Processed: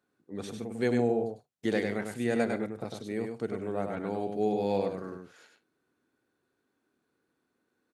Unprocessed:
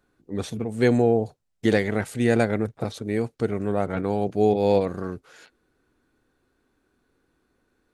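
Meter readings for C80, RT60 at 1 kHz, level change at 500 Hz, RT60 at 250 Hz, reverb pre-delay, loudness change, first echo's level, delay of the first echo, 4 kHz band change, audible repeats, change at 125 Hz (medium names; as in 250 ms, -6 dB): no reverb, no reverb, -7.5 dB, no reverb, no reverb, -8.0 dB, -5.0 dB, 100 ms, -7.5 dB, 2, -11.5 dB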